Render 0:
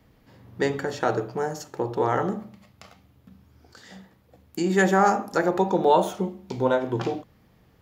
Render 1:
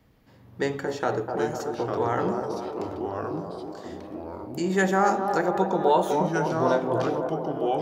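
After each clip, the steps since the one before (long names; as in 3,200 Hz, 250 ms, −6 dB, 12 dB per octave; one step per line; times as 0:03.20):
delay with a band-pass on its return 251 ms, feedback 66%, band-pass 580 Hz, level −5 dB
delay with pitch and tempo change per echo 658 ms, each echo −3 semitones, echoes 2, each echo −6 dB
level −2.5 dB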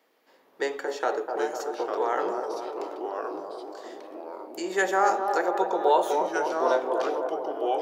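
high-pass filter 370 Hz 24 dB per octave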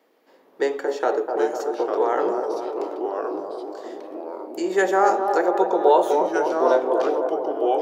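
parametric band 330 Hz +7.5 dB 2.7 octaves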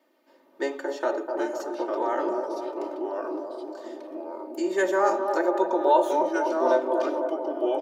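comb filter 3.3 ms, depth 87%
level −6 dB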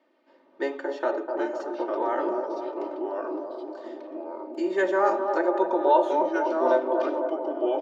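low-pass filter 3,800 Hz 12 dB per octave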